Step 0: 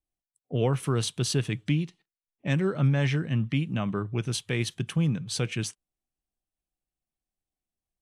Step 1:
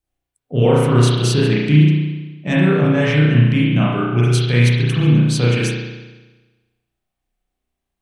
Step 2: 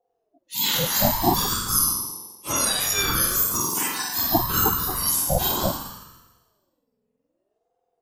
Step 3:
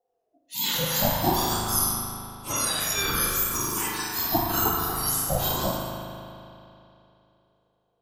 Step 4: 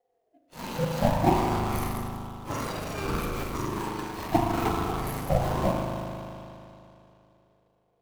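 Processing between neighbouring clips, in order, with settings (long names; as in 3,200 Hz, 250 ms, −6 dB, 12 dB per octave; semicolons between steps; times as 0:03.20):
spring reverb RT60 1.2 s, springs 33 ms, chirp 40 ms, DRR −7 dB; level +5.5 dB
frequency axis turned over on the octave scale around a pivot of 1,300 Hz; low-shelf EQ 160 Hz +6 dB; ring modulator whose carrier an LFO sweeps 470 Hz, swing 30%, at 0.64 Hz
spring reverb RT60 2.8 s, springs 38 ms, chirp 45 ms, DRR 2 dB; level −4 dB
running median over 25 samples; level +3.5 dB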